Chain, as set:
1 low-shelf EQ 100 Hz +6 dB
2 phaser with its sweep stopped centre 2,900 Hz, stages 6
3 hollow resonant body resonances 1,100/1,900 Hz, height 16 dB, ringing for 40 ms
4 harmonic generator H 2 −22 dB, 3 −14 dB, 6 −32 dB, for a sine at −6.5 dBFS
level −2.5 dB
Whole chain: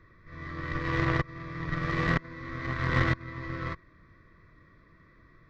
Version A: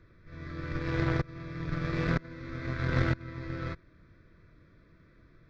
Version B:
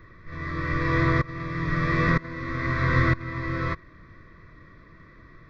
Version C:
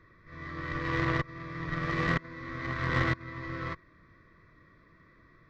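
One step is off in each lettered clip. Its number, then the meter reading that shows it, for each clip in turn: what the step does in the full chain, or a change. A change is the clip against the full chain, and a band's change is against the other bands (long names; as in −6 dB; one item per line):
3, 1 kHz band −6.0 dB
4, 4 kHz band −4.0 dB
1, 125 Hz band −2.0 dB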